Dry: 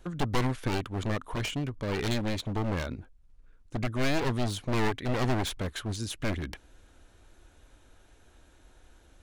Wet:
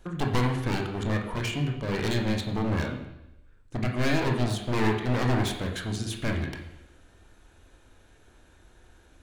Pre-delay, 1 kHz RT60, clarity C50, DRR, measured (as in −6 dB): 23 ms, 0.90 s, 6.0 dB, 1.0 dB